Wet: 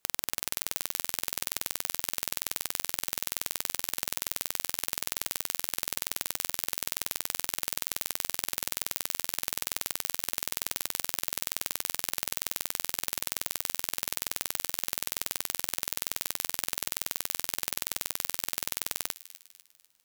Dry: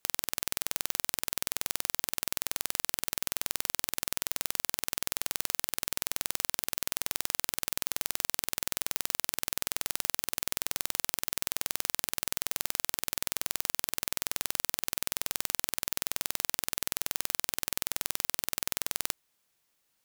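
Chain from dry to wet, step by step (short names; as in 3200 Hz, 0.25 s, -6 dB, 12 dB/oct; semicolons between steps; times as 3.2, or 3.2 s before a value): thin delay 0.248 s, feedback 44%, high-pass 2300 Hz, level -15 dB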